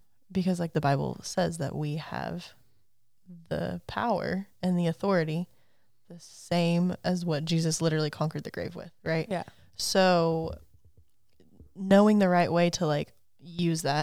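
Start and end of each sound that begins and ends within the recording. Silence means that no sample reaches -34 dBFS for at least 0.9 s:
3.51–5.43
6.51–10.54

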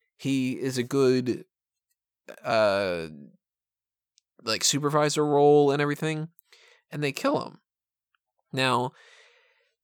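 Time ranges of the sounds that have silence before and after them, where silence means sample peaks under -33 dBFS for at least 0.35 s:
2.29–3.08
4.46–6.39
6.93–7.48
8.54–8.88

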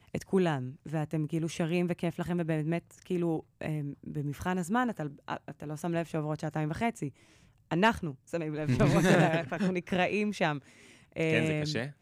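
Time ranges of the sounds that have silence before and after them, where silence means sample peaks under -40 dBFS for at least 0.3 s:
7.71–10.59

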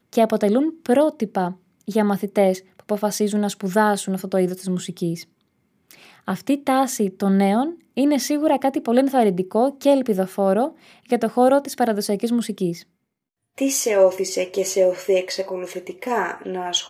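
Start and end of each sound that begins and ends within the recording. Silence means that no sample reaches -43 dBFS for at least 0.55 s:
5.91–12.83

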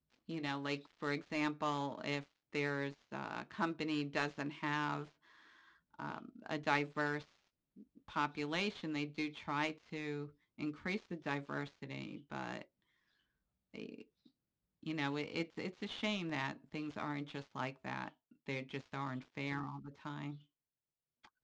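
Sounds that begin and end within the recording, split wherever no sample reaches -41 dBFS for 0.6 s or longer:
5.99–7.21
8.16–12.62
13.75–14.01
14.86–20.32

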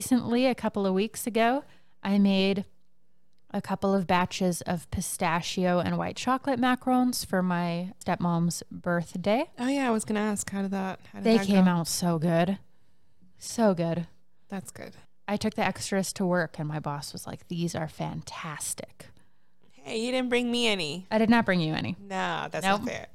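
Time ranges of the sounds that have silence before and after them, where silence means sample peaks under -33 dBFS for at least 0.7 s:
3.54–12.55
13.43–19.01

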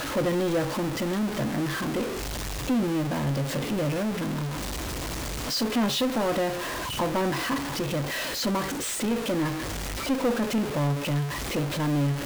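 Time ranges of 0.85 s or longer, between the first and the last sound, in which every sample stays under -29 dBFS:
4.48–5.48

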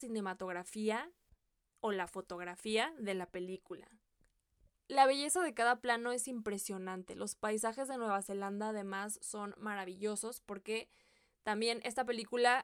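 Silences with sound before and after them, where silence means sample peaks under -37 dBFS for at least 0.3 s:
1.04–1.84
3.73–4.9
10.82–11.47

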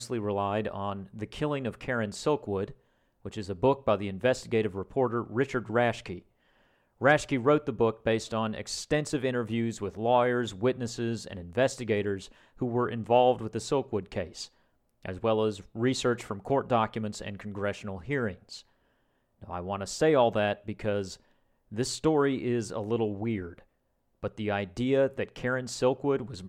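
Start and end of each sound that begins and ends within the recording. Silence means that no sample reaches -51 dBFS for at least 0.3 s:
3.25–6.2
7.01–14.48
15.03–18.62
19.42–21.2
21.71–23.63

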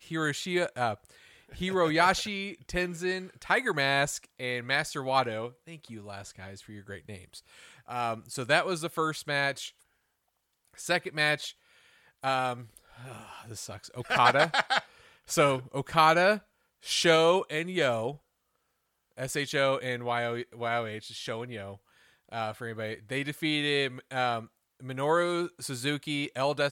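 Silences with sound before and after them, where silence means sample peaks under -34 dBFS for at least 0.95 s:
9.68–10.8
18.11–19.19

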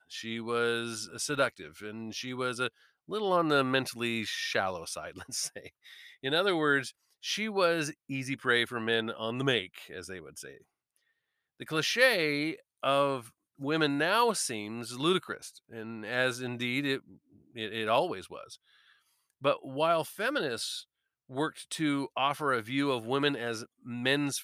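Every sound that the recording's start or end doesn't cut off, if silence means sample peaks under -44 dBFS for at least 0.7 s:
11.6–18.55

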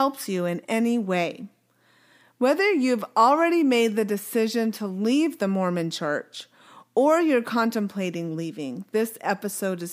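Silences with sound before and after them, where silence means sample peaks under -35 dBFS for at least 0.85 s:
1.45–2.41

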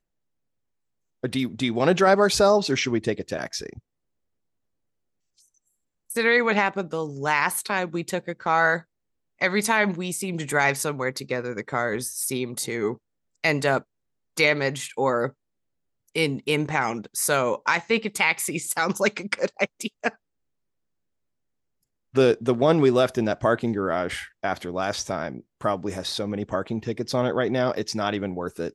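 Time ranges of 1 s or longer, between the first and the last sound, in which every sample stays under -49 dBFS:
3.79–5.39
20.15–22.14

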